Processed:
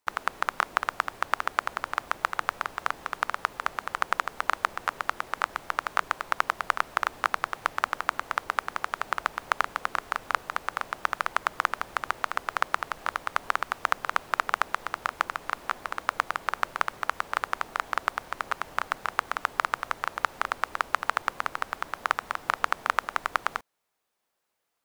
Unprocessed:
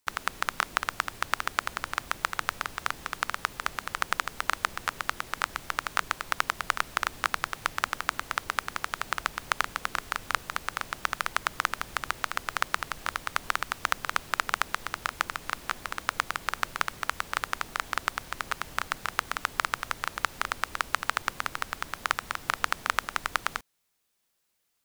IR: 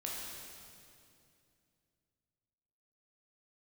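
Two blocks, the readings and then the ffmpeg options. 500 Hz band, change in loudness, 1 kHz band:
+4.0 dB, +1.5 dB, +3.0 dB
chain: -af "equalizer=f=750:t=o:w=2.9:g=12,volume=-7dB"

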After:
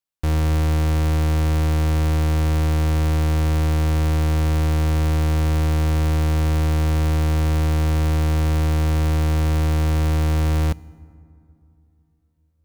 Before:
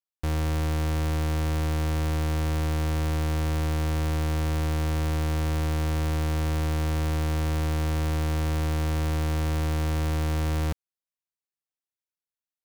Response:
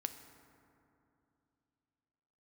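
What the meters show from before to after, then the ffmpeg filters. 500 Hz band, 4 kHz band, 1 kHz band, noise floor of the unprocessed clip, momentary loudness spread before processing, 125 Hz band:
+5.0 dB, +4.0 dB, +4.5 dB, under -85 dBFS, 0 LU, +7.5 dB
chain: -filter_complex "[0:a]asplit=2[a][b];[1:a]atrim=start_sample=2205,lowshelf=f=330:g=7[c];[b][c]afir=irnorm=-1:irlink=0,volume=-3.5dB[d];[a][d]amix=inputs=2:normalize=0"

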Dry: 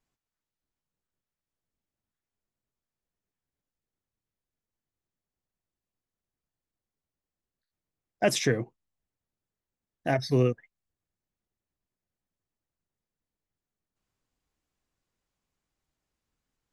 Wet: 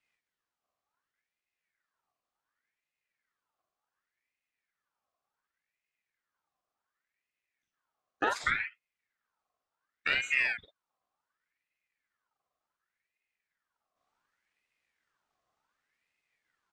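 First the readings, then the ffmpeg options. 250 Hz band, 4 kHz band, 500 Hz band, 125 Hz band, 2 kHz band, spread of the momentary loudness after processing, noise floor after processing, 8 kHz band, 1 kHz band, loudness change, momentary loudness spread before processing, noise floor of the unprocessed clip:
-17.0 dB, -2.5 dB, -15.5 dB, -25.5 dB, +6.5 dB, 10 LU, under -85 dBFS, -11.0 dB, -0.5 dB, -3.0 dB, 14 LU, under -85 dBFS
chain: -filter_complex "[0:a]equalizer=f=190:t=o:w=2.2:g=8.5,acrossover=split=360|1200[a][b][c];[a]acompressor=threshold=-32dB:ratio=4[d];[b]acompressor=threshold=-35dB:ratio=4[e];[c]acompressor=threshold=-41dB:ratio=4[f];[d][e][f]amix=inputs=3:normalize=0,highpass=110,lowpass=6.3k,asplit=2[g][h];[h]adelay=45,volume=-4dB[i];[g][i]amix=inputs=2:normalize=0,aeval=exprs='val(0)*sin(2*PI*1600*n/s+1600*0.45/0.68*sin(2*PI*0.68*n/s))':c=same,volume=2.5dB"

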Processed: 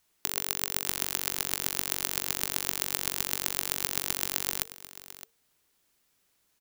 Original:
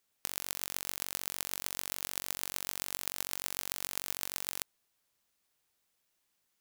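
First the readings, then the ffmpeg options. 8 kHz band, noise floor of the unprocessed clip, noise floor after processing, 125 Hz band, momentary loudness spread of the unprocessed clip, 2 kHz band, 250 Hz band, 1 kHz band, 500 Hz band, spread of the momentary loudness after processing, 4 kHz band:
+6.5 dB, -79 dBFS, -72 dBFS, +10.0 dB, 2 LU, +6.5 dB, +9.5 dB, +6.5 dB, +7.5 dB, 8 LU, +6.5 dB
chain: -af "aecho=1:1:614:0.178,afreqshift=-460,volume=6.5dB"

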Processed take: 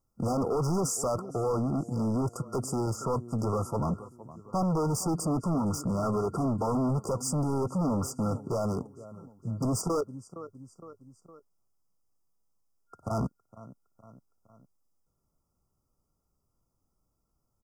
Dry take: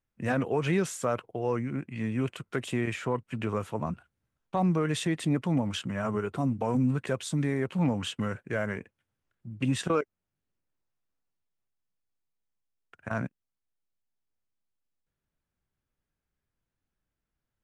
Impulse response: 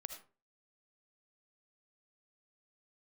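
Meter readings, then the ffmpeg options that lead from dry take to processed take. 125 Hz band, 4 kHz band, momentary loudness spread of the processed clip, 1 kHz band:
+0.5 dB, -6.0 dB, 15 LU, +1.5 dB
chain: -af "aecho=1:1:462|924|1386:0.0668|0.0354|0.0188,volume=33.5dB,asoftclip=hard,volume=-33.5dB,afftfilt=real='re*(1-between(b*sr/4096,1400,4700))':imag='im*(1-between(b*sr/4096,1400,4700))':win_size=4096:overlap=0.75,volume=8dB"

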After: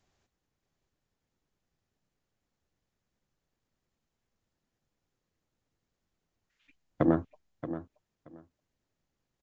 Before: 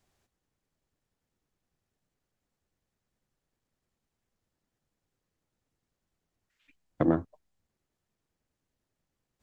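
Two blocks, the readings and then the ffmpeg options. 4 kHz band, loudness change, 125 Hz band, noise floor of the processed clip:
n/a, -2.5 dB, +0.5 dB, -85 dBFS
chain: -filter_complex "[0:a]asplit=2[a][b];[b]aecho=0:1:627|1254:0.251|0.0427[c];[a][c]amix=inputs=2:normalize=0,aresample=16000,aresample=44100"

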